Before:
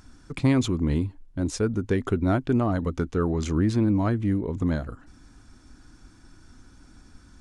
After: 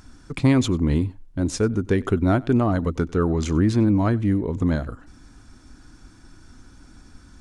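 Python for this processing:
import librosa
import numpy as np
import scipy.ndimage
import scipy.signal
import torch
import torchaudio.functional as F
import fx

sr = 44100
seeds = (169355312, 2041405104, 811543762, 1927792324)

y = x + 10.0 ** (-24.0 / 20.0) * np.pad(x, (int(95 * sr / 1000.0), 0))[:len(x)]
y = F.gain(torch.from_numpy(y), 3.5).numpy()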